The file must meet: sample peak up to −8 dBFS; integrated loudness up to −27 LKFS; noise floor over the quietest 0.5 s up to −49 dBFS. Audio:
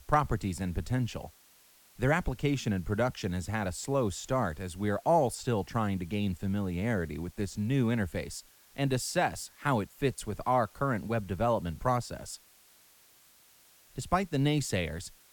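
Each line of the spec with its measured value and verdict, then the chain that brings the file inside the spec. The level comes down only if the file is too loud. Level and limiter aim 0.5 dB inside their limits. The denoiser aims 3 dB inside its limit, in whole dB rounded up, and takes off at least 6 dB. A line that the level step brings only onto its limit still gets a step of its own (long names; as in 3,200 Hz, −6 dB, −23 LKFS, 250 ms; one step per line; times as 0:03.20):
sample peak −12.5 dBFS: in spec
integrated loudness −31.5 LKFS: in spec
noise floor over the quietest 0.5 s −61 dBFS: in spec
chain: no processing needed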